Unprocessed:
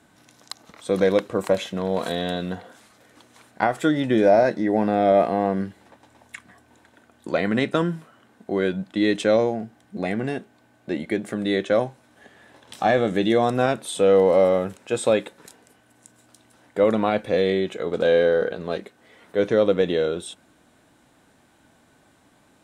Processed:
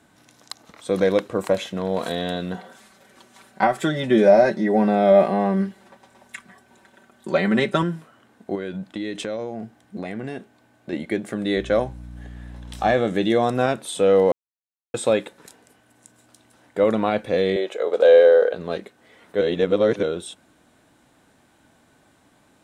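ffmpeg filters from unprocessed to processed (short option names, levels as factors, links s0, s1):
-filter_complex "[0:a]asettb=1/sr,asplit=3[s0][s1][s2];[s0]atrim=end=2.544[s3];[s1]atrim=start=2.54:end=7.83,asetpts=PTS-STARTPTS,afade=t=in:d=0.004:c=qsin,afade=t=out:st=5.286:d=0.004:c=qsin,aecho=1:1:5.2:0.8,atrim=end_sample=233289[s4];[s2]atrim=start=7.826[s5];[s3][s4]acrossfade=d=0.004:c1=hsin:c2=qsin[s6];[s6][s5]acrossfade=d=0.004:c1=qsin:c2=hsin,asettb=1/sr,asplit=3[s7][s8][s9];[s7]atrim=end=8.554[s10];[s8]atrim=start=8.55:end=10.93,asetpts=PTS-STARTPTS,afade=t=in:d=0.004:c=qsin,afade=t=out:st=2.376:d=0.004:c=qsin,acompressor=threshold=0.0501:ratio=4:attack=3.2:release=140:knee=1:detection=peak[s11];[s9]atrim=start=10.926[s12];[s10][s11]acrossfade=d=0.004:c1=hsin:c2=qsin[s13];[s13][s12]acrossfade=d=0.004:c1=qsin:c2=hsin,asettb=1/sr,asplit=3[s14][s15][s16];[s14]atrim=end=11.574[s17];[s15]atrim=start=11.57:end=12.94,asetpts=PTS-STARTPTS,afade=t=in:d=0.004:c=qsin,afade=t=out:st=1.366:d=0.004:c=qsin,aeval=exprs='val(0)+0.0158*(sin(2*PI*60*n/s)+sin(2*PI*2*60*n/s)/2+sin(2*PI*3*60*n/s)/3+sin(2*PI*4*60*n/s)/4+sin(2*PI*5*60*n/s)/5)':c=same[s18];[s16]atrim=start=12.936[s19];[s17][s18]acrossfade=d=0.004:c1=hsin:c2=qsin[s20];[s20][s19]acrossfade=d=0.004:c1=qsin:c2=hsin,asettb=1/sr,asplit=3[s21][s22][s23];[s21]atrim=end=17.564[s24];[s22]atrim=start=17.56:end=18.54,asetpts=PTS-STARTPTS,afade=t=in:d=0.004:c=qsin,afade=t=out:st=0.976:d=0.004:c=qsin,highpass=f=520:t=q:w=2.2[s25];[s23]atrim=start=18.536[s26];[s24][s25]acrossfade=d=0.004:c1=hsin:c2=qsin[s27];[s27][s26]acrossfade=d=0.004:c1=qsin:c2=hsin,asplit=5[s28][s29][s30][s31][s32];[s28]atrim=end=14.32,asetpts=PTS-STARTPTS,afade=t=out:st=14.316:d=0.004:c=hsin[s33];[s29]atrim=start=14.32:end=14.94,asetpts=PTS-STARTPTS,volume=0[s34];[s30]atrim=start=14.94:end=19.412,asetpts=PTS-STARTPTS,afade=t=in:d=0.004:c=hsin[s35];[s31]atrim=start=19.408:end=20.032,asetpts=PTS-STARTPTS,areverse[s36];[s32]atrim=start=20.028[s37];[s33][s34][s35]concat=n=3:v=0:a=1[s38];[s38][s36]acrossfade=d=0.004:c1=hsin:c2=hsin[s39];[s39][s37]acrossfade=d=0.004:c1=hsin:c2=hsin"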